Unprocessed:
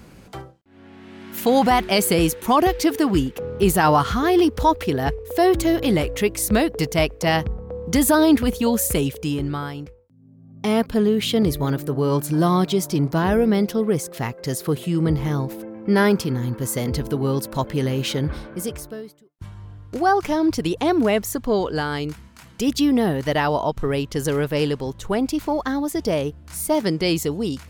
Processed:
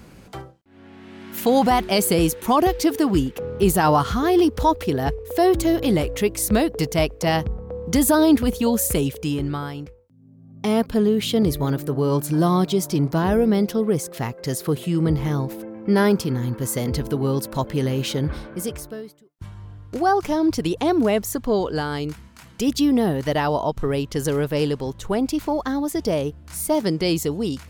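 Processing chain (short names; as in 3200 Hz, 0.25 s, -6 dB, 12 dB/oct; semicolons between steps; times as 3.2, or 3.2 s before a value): dynamic EQ 2000 Hz, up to -4 dB, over -33 dBFS, Q 0.9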